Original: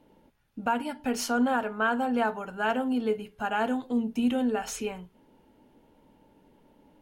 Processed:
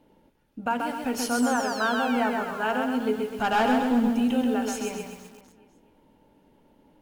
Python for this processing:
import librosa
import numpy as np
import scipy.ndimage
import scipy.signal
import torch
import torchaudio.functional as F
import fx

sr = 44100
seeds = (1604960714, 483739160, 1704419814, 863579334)

y = fx.spec_paint(x, sr, seeds[0], shape='fall', start_s=1.17, length_s=1.62, low_hz=740.0, high_hz=12000.0, level_db=-42.0)
y = fx.leveller(y, sr, passes=2, at=(3.32, 4.1))
y = fx.echo_feedback(y, sr, ms=253, feedback_pct=40, wet_db=-12)
y = fx.echo_crushed(y, sr, ms=132, feedback_pct=35, bits=8, wet_db=-3.5)